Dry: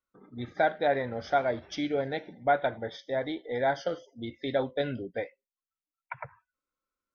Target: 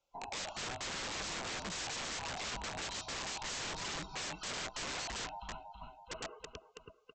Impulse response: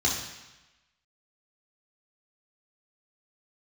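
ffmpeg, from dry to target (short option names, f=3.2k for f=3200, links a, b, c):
-af "afftfilt=real='real(if(lt(b,1008),b+24*(1-2*mod(floor(b/24),2)),b),0)':imag='imag(if(lt(b,1008),b+24*(1-2*mod(floor(b/24),2)),b),0)':win_size=2048:overlap=0.75,acompressor=threshold=-40dB:ratio=6,asuperstop=centerf=1800:order=8:qfactor=2.6,aecho=1:1:326|652|978|1304|1630:0.237|0.126|0.0666|0.0353|0.0187,aresample=16000,aeval=exprs='(mod(200*val(0)+1,2)-1)/200':c=same,aresample=44100,volume=10.5dB"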